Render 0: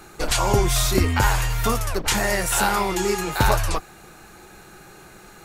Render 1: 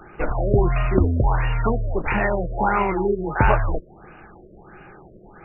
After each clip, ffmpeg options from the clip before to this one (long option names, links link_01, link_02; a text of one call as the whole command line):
ffmpeg -i in.wav -af "afftfilt=real='re*lt(b*sr/1024,640*pow(3000/640,0.5+0.5*sin(2*PI*1.5*pts/sr)))':imag='im*lt(b*sr/1024,640*pow(3000/640,0.5+0.5*sin(2*PI*1.5*pts/sr)))':win_size=1024:overlap=0.75,volume=2dB" out.wav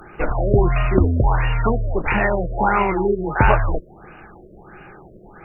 ffmpeg -i in.wav -af "aemphasis=mode=production:type=cd,volume=2.5dB" out.wav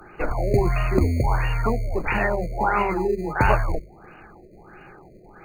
ffmpeg -i in.wav -filter_complex "[0:a]bandreject=frequency=50:width_type=h:width=6,bandreject=frequency=100:width_type=h:width=6,bandreject=frequency=150:width_type=h:width=6,bandreject=frequency=200:width_type=h:width=6,acrossover=split=200[link_01][link_02];[link_01]acrusher=samples=20:mix=1:aa=0.000001[link_03];[link_03][link_02]amix=inputs=2:normalize=0,volume=-3.5dB" out.wav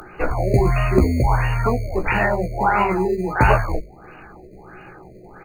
ffmpeg -i in.wav -filter_complex "[0:a]asplit=2[link_01][link_02];[link_02]adelay=16,volume=-5dB[link_03];[link_01][link_03]amix=inputs=2:normalize=0,acompressor=mode=upward:threshold=-40dB:ratio=2.5,volume=2.5dB" out.wav